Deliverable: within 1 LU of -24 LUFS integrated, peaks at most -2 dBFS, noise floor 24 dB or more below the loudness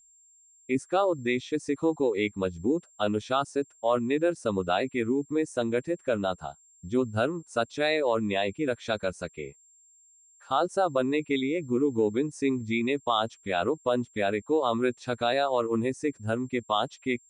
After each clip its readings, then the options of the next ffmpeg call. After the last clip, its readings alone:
steady tone 7400 Hz; tone level -57 dBFS; loudness -28.0 LUFS; peak -11.5 dBFS; loudness target -24.0 LUFS
-> -af "bandreject=f=7.4k:w=30"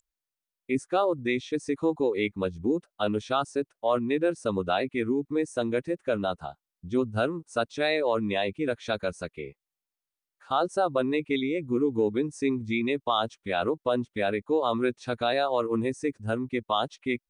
steady tone none; loudness -28.0 LUFS; peak -11.5 dBFS; loudness target -24.0 LUFS
-> -af "volume=4dB"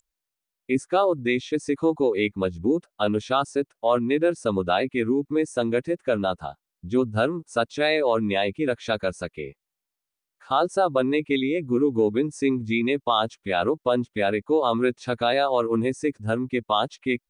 loudness -24.0 LUFS; peak -7.5 dBFS; noise floor -86 dBFS

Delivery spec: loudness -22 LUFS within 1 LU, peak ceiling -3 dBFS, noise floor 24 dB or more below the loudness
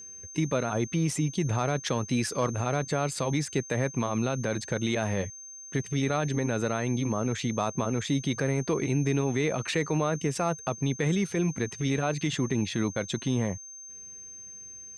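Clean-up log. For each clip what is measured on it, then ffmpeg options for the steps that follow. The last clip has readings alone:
steady tone 6300 Hz; tone level -42 dBFS; loudness -29.0 LUFS; peak -17.0 dBFS; loudness target -22.0 LUFS
-> -af "bandreject=f=6.3k:w=30"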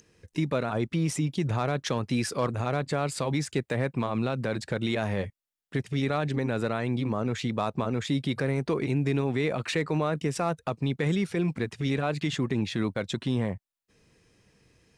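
steady tone none; loudness -29.0 LUFS; peak -17.0 dBFS; loudness target -22.0 LUFS
-> -af "volume=7dB"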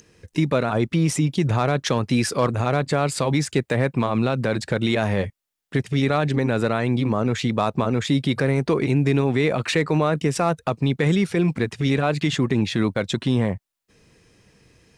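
loudness -22.0 LUFS; peak -10.0 dBFS; noise floor -70 dBFS

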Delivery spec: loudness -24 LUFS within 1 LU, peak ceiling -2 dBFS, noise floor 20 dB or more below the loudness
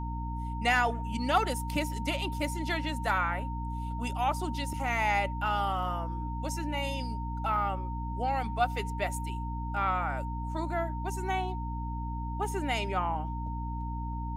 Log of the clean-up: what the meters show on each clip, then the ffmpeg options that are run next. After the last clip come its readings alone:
hum 60 Hz; harmonics up to 300 Hz; hum level -33 dBFS; steady tone 920 Hz; tone level -39 dBFS; loudness -32.0 LUFS; peak -13.0 dBFS; loudness target -24.0 LUFS
-> -af "bandreject=f=60:t=h:w=6,bandreject=f=120:t=h:w=6,bandreject=f=180:t=h:w=6,bandreject=f=240:t=h:w=6,bandreject=f=300:t=h:w=6"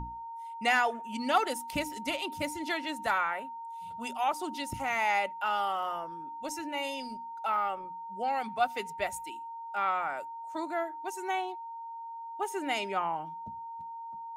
hum none; steady tone 920 Hz; tone level -39 dBFS
-> -af "bandreject=f=920:w=30"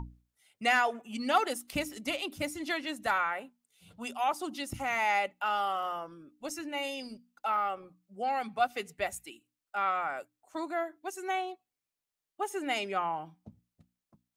steady tone none; loudness -33.0 LUFS; peak -13.5 dBFS; loudness target -24.0 LUFS
-> -af "volume=9dB"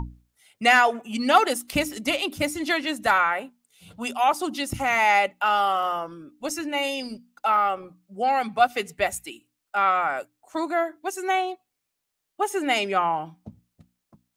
loudness -24.0 LUFS; peak -4.5 dBFS; noise floor -81 dBFS

